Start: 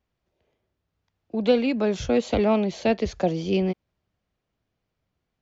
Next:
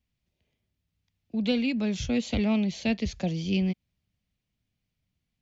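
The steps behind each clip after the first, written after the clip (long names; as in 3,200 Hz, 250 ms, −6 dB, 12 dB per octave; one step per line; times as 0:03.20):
flat-topped bell 720 Hz −11.5 dB 2.6 octaves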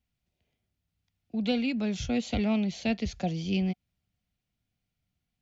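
hollow resonant body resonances 730/1,400 Hz, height 8 dB
level −2 dB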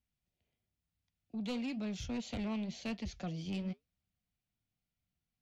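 soft clipping −26.5 dBFS, distortion −13 dB
flanger 1 Hz, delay 3 ms, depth 6.6 ms, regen −78%
level −2.5 dB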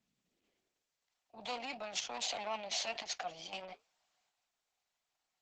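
transient designer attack −4 dB, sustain +9 dB
high-pass filter sweep 200 Hz → 770 Hz, 0:00.20–0:01.14
level +4.5 dB
Opus 10 kbit/s 48,000 Hz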